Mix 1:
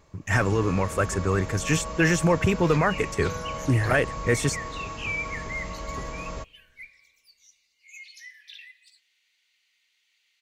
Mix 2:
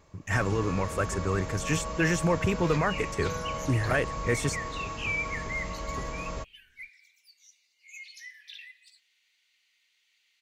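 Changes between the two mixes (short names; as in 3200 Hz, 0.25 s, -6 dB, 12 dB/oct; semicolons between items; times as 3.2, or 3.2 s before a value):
speech -4.5 dB; reverb: off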